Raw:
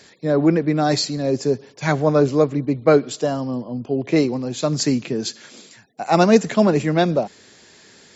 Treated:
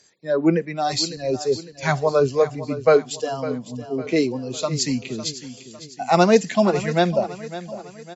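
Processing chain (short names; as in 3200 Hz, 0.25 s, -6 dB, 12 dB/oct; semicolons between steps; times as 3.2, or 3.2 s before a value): 0.72–1.18 dynamic EQ 1600 Hz, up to -7 dB, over -41 dBFS, Q 2.3; spectral noise reduction 14 dB; bell 230 Hz -5 dB 0.34 oct; feedback echo 0.554 s, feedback 46%, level -14 dB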